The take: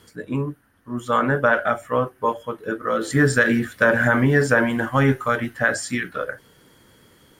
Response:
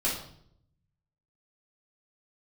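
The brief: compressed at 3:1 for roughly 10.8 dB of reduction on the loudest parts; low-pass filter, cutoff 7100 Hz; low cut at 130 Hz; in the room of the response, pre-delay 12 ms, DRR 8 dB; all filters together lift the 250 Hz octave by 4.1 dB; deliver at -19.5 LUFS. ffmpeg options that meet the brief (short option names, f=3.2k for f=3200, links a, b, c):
-filter_complex "[0:a]highpass=130,lowpass=7.1k,equalizer=f=250:t=o:g=5,acompressor=threshold=-26dB:ratio=3,asplit=2[a][b];[1:a]atrim=start_sample=2205,adelay=12[c];[b][c]afir=irnorm=-1:irlink=0,volume=-16.5dB[d];[a][d]amix=inputs=2:normalize=0,volume=7.5dB"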